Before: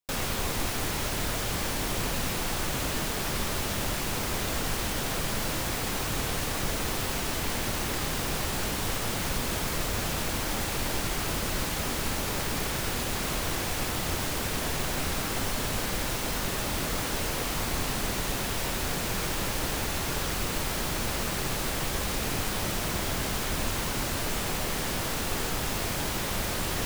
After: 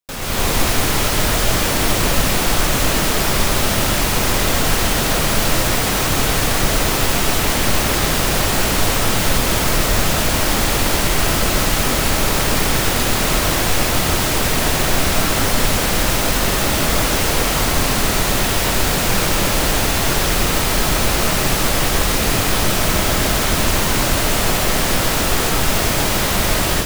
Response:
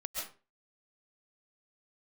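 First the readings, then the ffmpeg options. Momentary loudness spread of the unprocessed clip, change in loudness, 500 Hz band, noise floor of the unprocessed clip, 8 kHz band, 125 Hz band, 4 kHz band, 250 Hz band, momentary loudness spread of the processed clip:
0 LU, +13.0 dB, +13.0 dB, -31 dBFS, +13.0 dB, +12.5 dB, +13.0 dB, +12.5 dB, 0 LU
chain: -filter_complex "[0:a]dynaudnorm=f=200:g=3:m=10.5dB,asplit=2[a][b];[1:a]atrim=start_sample=2205[c];[b][c]afir=irnorm=-1:irlink=0,volume=-2dB[d];[a][d]amix=inputs=2:normalize=0,volume=-2dB"

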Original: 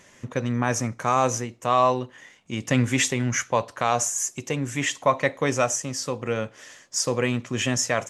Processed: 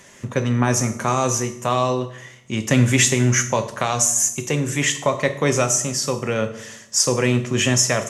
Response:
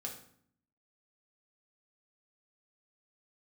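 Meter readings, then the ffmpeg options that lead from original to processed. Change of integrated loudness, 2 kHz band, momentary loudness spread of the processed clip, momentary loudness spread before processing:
+5.0 dB, +4.0 dB, 9 LU, 8 LU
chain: -filter_complex "[0:a]acrossover=split=430|3000[a][b][c];[b]acompressor=threshold=-25dB:ratio=6[d];[a][d][c]amix=inputs=3:normalize=0,asplit=2[e][f];[1:a]atrim=start_sample=2205,asetrate=35280,aresample=44100,highshelf=f=6.6k:g=10[g];[f][g]afir=irnorm=-1:irlink=0,volume=-2dB[h];[e][h]amix=inputs=2:normalize=0,volume=1.5dB"

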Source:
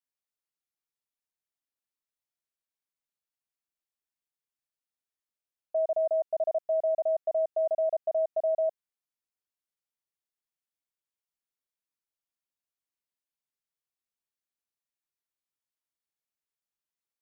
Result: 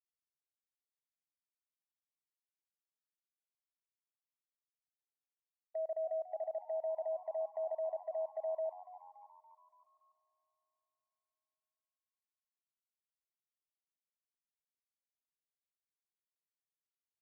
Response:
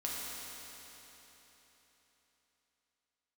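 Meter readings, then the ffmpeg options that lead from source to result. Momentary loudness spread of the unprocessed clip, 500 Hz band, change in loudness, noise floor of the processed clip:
3 LU, -10.5 dB, -10.5 dB, under -85 dBFS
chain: -filter_complex "[0:a]agate=range=-24dB:threshold=-30dB:ratio=16:detection=peak,lowshelf=f=460:g=-10.5,acompressor=threshold=-31dB:ratio=6,alimiter=level_in=10.5dB:limit=-24dB:level=0:latency=1:release=173,volume=-10.5dB,asplit=6[a][b][c][d][e][f];[b]adelay=285,afreqshift=89,volume=-16dB[g];[c]adelay=570,afreqshift=178,volume=-21.2dB[h];[d]adelay=855,afreqshift=267,volume=-26.4dB[i];[e]adelay=1140,afreqshift=356,volume=-31.6dB[j];[f]adelay=1425,afreqshift=445,volume=-36.8dB[k];[a][g][h][i][j][k]amix=inputs=6:normalize=0,asplit=2[l][m];[1:a]atrim=start_sample=2205,adelay=106[n];[m][n]afir=irnorm=-1:irlink=0,volume=-22dB[o];[l][o]amix=inputs=2:normalize=0,volume=1.5dB"

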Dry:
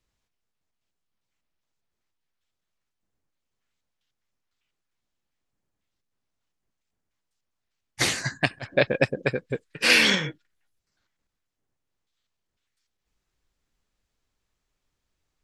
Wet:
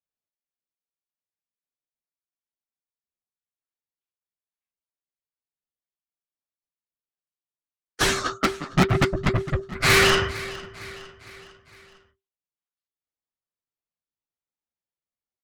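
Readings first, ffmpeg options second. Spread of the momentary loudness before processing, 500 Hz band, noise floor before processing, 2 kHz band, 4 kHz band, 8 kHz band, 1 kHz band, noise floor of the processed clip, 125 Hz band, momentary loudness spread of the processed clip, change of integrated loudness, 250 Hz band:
13 LU, +2.0 dB, -82 dBFS, +0.5 dB, 0.0 dB, +2.5 dB, +9.0 dB, under -85 dBFS, +7.5 dB, 21 LU, +1.0 dB, +5.0 dB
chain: -filter_complex "[0:a]highpass=650,agate=range=-23dB:threshold=-51dB:ratio=16:detection=peak,tiltshelf=f=970:g=7.5,flanger=delay=3.2:depth=7.5:regen=-36:speed=2:shape=triangular,aeval=exprs='0.237*(cos(1*acos(clip(val(0)/0.237,-1,1)))-cos(1*PI/2))+0.0299*(cos(8*acos(clip(val(0)/0.237,-1,1)))-cos(8*PI/2))':c=same,asplit=2[a][b];[b]aecho=0:1:457|914|1371|1828:0.1|0.05|0.025|0.0125[c];[a][c]amix=inputs=2:normalize=0,flanger=delay=1.9:depth=5.7:regen=-29:speed=0.86:shape=sinusoidal,aeval=exprs='0.299*sin(PI/2*3.98*val(0)/0.299)':c=same,afreqshift=-390"

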